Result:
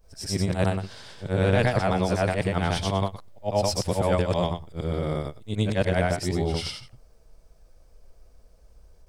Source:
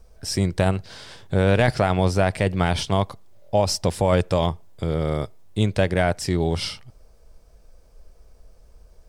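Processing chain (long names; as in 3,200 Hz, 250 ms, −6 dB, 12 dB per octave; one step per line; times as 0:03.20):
every overlapping window played backwards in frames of 247 ms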